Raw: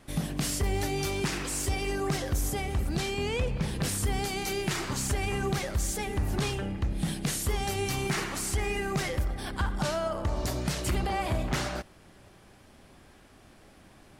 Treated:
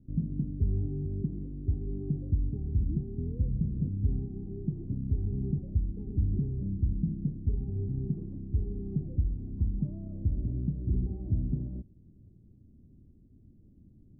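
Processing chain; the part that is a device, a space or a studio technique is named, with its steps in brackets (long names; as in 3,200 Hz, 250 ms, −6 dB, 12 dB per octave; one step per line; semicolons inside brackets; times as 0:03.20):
the neighbour's flat through the wall (low-pass filter 280 Hz 24 dB per octave; parametric band 98 Hz +4 dB)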